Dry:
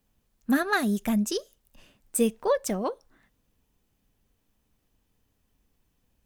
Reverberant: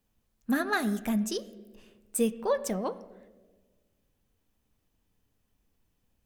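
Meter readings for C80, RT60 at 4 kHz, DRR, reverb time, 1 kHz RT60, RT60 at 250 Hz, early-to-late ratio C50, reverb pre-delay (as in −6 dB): 17.0 dB, 0.90 s, 11.5 dB, 1.4 s, 1.1 s, 1.7 s, 15.5 dB, 9 ms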